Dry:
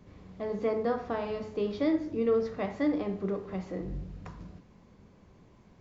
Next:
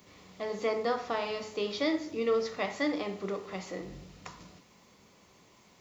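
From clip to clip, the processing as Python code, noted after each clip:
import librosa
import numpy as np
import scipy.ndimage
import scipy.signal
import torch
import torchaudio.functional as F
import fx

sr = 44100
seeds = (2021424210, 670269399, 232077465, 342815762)

y = fx.tilt_eq(x, sr, slope=4.0)
y = fx.notch(y, sr, hz=1600.0, q=9.2)
y = y * 10.0 ** (3.0 / 20.0)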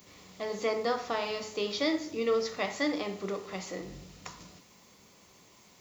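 y = fx.high_shelf(x, sr, hz=5500.0, db=9.5)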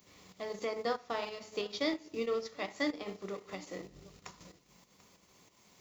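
y = fx.tremolo_shape(x, sr, shape='saw_up', hz=3.1, depth_pct=40)
y = y + 10.0 ** (-18.0 / 20.0) * np.pad(y, (int(739 * sr / 1000.0), 0))[:len(y)]
y = fx.transient(y, sr, attack_db=2, sustain_db=-10)
y = y * 10.0 ** (-3.5 / 20.0)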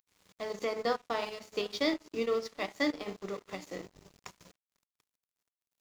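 y = np.sign(x) * np.maximum(np.abs(x) - 10.0 ** (-54.5 / 20.0), 0.0)
y = y * 10.0 ** (3.5 / 20.0)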